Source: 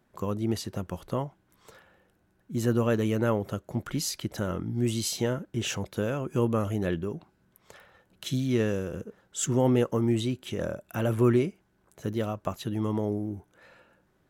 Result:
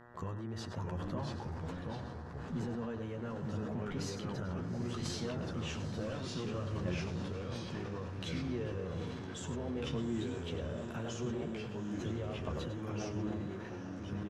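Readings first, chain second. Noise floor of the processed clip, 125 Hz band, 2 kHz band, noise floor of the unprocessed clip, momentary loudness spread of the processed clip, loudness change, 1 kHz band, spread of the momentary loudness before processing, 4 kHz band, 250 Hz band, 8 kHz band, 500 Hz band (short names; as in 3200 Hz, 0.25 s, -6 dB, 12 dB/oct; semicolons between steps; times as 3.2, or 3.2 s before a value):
-44 dBFS, -8.0 dB, -7.5 dB, -69 dBFS, 4 LU, -10.5 dB, -8.0 dB, 11 LU, -8.0 dB, -9.5 dB, -14.0 dB, -11.5 dB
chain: compressor, threshold -38 dBFS, peak gain reduction 19 dB; chorus voices 6, 0.43 Hz, delay 12 ms, depth 1.1 ms; air absorption 91 m; outdoor echo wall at 17 m, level -10 dB; buzz 120 Hz, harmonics 16, -60 dBFS -2 dB/oct; echoes that change speed 0.591 s, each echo -2 st, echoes 2; on a send: diffused feedback echo 0.812 s, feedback 53%, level -10.5 dB; on the sum: sustainer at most 24 dB/s; gain +1.5 dB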